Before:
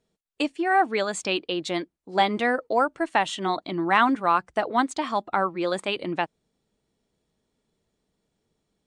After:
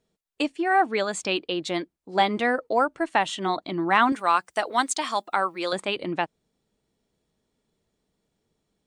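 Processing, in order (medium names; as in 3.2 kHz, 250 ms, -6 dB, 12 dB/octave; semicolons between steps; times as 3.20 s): 4.12–5.73 s: RIAA curve recording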